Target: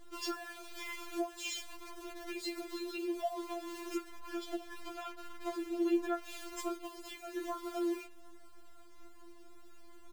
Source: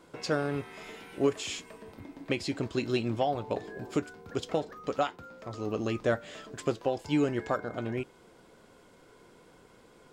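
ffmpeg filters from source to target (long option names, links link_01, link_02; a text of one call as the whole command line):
ffmpeg -i in.wav -filter_complex "[0:a]lowshelf=frequency=120:gain=8,aecho=1:1:32|47:0.141|0.15,aeval=exprs='val(0)+0.00158*(sin(2*PI*50*n/s)+sin(2*PI*2*50*n/s)/2+sin(2*PI*3*50*n/s)/3+sin(2*PI*4*50*n/s)/4+sin(2*PI*5*50*n/s)/5)':channel_layout=same,acrusher=bits=8:dc=4:mix=0:aa=0.000001,flanger=delay=2.4:depth=7.6:regen=-80:speed=0.31:shape=sinusoidal,acompressor=threshold=-37dB:ratio=4,asettb=1/sr,asplit=3[link_01][link_02][link_03];[link_01]atrim=end=4.044[link_04];[link_02]atrim=start=4.04:end=6.23,asetpts=PTS-STARTPTS,afade=type=in:duration=0.004:curve=qsin,afade=type=out:start_time=2.186:duration=0.004:curve=qsin,bass=frequency=250:gain=3,treble=frequency=4000:gain=-4[link_05];[link_03]atrim=start=6.226[link_06];[link_04][link_05]acrossfade=duration=0.004:curve1=hsin:curve2=qsin[link_07];[link_07][link_06]acrossfade=duration=0.004:curve1=qsin:curve2=hsin,afftfilt=real='re*4*eq(mod(b,16),0)':imag='im*4*eq(mod(b,16),0)':win_size=2048:overlap=0.75,volume=6dB" out.wav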